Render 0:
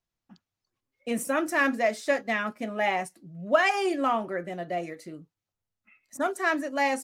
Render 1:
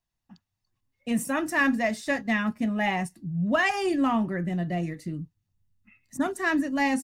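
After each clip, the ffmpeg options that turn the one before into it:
-af "asubboost=boost=8:cutoff=220,aecho=1:1:1.1:0.32"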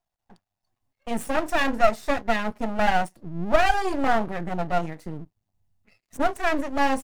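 -af "equalizer=f=710:w=2:g=14.5,aeval=exprs='max(val(0),0)':c=same,volume=1dB"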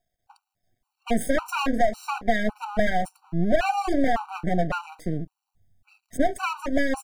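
-af "acompressor=threshold=-22dB:ratio=5,afftfilt=real='re*gt(sin(2*PI*1.8*pts/sr)*(1-2*mod(floor(b*sr/1024/770),2)),0)':imag='im*gt(sin(2*PI*1.8*pts/sr)*(1-2*mod(floor(b*sr/1024/770),2)),0)':win_size=1024:overlap=0.75,volume=7dB"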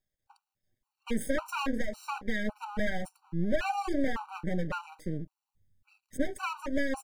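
-af "asuperstop=centerf=690:order=8:qfactor=5.4,volume=-6.5dB"

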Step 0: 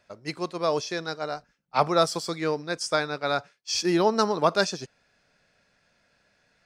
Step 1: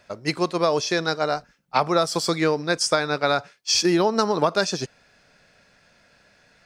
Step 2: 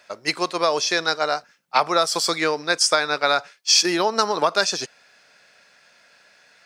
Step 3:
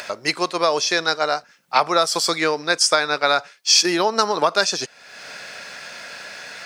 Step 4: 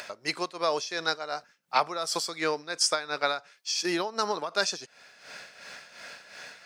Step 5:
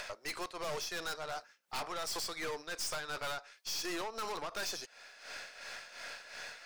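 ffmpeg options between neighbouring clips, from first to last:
-af "acompressor=threshold=-25dB:ratio=10,volume=9dB"
-af "highpass=f=880:p=1,volume=5dB"
-af "acompressor=mode=upward:threshold=-22dB:ratio=2.5,volume=1.5dB"
-af "tremolo=f=2.8:d=0.68,volume=-7dB"
-af "highpass=400,aeval=exprs='(tanh(70.8*val(0)+0.45)-tanh(0.45))/70.8':c=same,volume=1dB"

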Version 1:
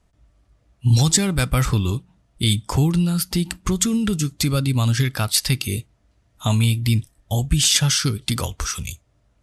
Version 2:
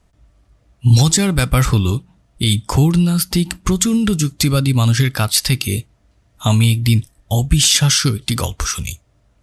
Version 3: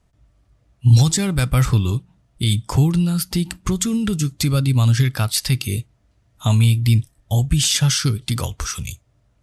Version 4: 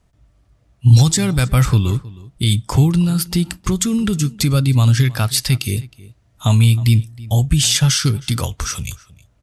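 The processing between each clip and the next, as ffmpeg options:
-af "alimiter=level_in=6dB:limit=-1dB:release=50:level=0:latency=1,volume=-1dB"
-af "equalizer=f=120:t=o:w=0.73:g=5,volume=-5.5dB"
-filter_complex "[0:a]asplit=2[a][b];[b]adelay=314.9,volume=-20dB,highshelf=f=4k:g=-7.08[c];[a][c]amix=inputs=2:normalize=0,volume=2.5dB"

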